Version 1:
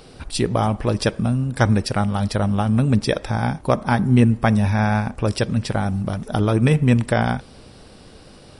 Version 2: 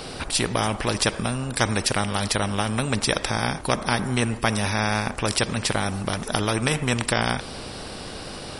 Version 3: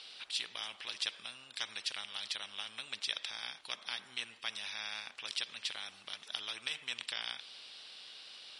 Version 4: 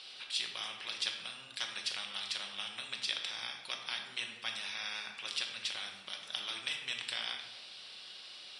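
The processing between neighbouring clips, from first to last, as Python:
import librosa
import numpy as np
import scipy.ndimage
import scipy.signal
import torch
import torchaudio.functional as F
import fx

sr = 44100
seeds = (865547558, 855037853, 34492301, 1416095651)

y1 = fx.spectral_comp(x, sr, ratio=2.0)
y2 = fx.bandpass_q(y1, sr, hz=3400.0, q=2.5)
y2 = y2 * librosa.db_to_amplitude(-6.5)
y3 = fx.room_shoebox(y2, sr, seeds[0], volume_m3=490.0, walls='mixed', distance_m=1.0)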